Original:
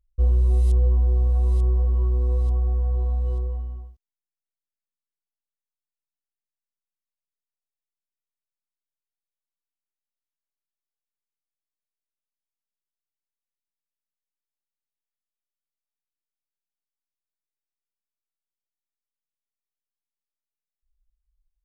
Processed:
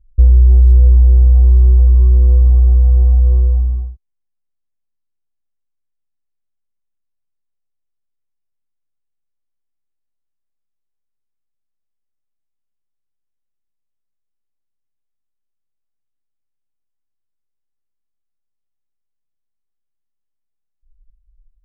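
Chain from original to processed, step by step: tilt -3.5 dB/oct; compressor 2:1, threshold -11 dBFS, peak gain reduction 5.5 dB; gain +2 dB

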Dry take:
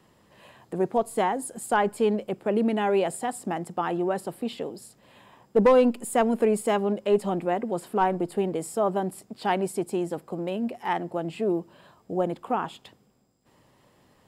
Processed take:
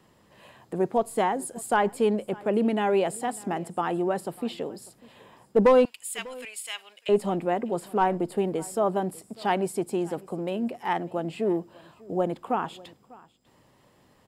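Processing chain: 5.85–7.09 resonant high-pass 2700 Hz, resonance Q 1.6; echo 0.597 s -22.5 dB

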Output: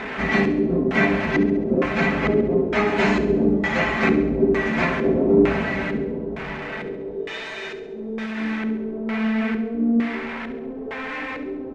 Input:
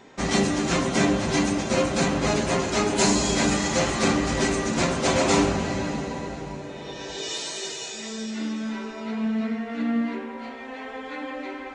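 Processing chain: delta modulation 64 kbps, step -27 dBFS; comb 4.6 ms, depth 44%; LFO low-pass square 1.1 Hz 390–2100 Hz; thinning echo 68 ms, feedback 55%, level -11.5 dB

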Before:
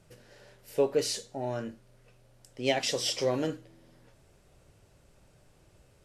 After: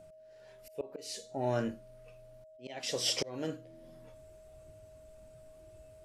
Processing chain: auto swell 0.641 s; whine 630 Hz -50 dBFS; spectral noise reduction 7 dB; gain +3.5 dB

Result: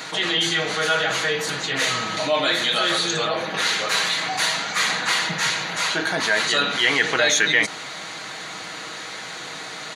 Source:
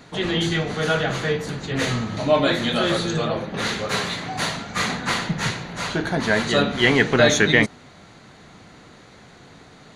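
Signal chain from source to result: HPF 1500 Hz 6 dB/oct; comb 6.3 ms, depth 44%; fast leveller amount 50%

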